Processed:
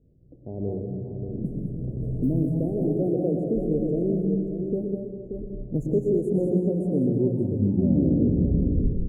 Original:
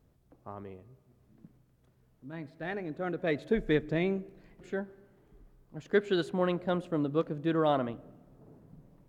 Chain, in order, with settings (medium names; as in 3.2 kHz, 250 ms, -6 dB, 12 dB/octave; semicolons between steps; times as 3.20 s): tape stop on the ending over 2.36 s; recorder AGC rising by 16 dB/s; level-controlled noise filter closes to 850 Hz, open at -25.5 dBFS; in parallel at -2 dB: peak limiter -23.5 dBFS, peak gain reduction 10.5 dB; on the sum: inverse Chebyshev band-stop 1.1–4.7 kHz, stop band 50 dB; multi-tap echo 207/581 ms -6.5/-7.5 dB; on a send at -3 dB: reverberation RT60 1.1 s, pre-delay 102 ms